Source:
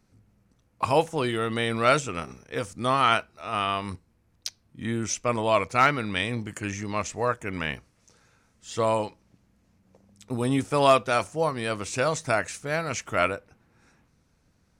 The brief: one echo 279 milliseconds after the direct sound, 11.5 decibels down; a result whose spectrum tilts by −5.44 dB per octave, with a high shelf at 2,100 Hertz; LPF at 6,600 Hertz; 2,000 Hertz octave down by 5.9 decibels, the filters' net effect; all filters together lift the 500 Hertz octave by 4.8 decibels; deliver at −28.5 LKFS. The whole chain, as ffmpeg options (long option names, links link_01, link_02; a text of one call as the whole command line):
ffmpeg -i in.wav -af "lowpass=6600,equalizer=frequency=500:width_type=o:gain=7,equalizer=frequency=2000:width_type=o:gain=-3.5,highshelf=frequency=2100:gain=-8.5,aecho=1:1:279:0.266,volume=-4dB" out.wav